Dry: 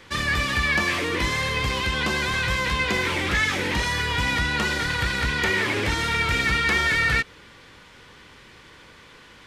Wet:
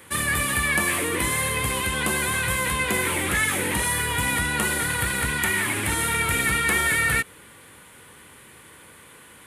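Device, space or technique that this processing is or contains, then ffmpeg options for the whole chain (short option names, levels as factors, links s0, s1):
budget condenser microphone: -filter_complex "[0:a]asettb=1/sr,asplit=3[s0][s1][s2];[s0]atrim=end=5.374[s3];[s1]atrim=start=5.37:end=5.89,asetpts=PTS-STARTPTS,afade=t=in:d=0.004:c=qsin,afade=t=out:st=0.516:d=0.004:c=qsin,equalizer=f=470:w=2.7:g=-12.5[s4];[s2]atrim=start=5.886[s5];[s3][s4]acrossfade=d=0.004:c1=hsin:c2=qsin[s6];[s6][s5]acrossfade=d=0.004:c1=qsin:c2=hsin,highpass=72,highshelf=f=7400:t=q:w=3:g=13"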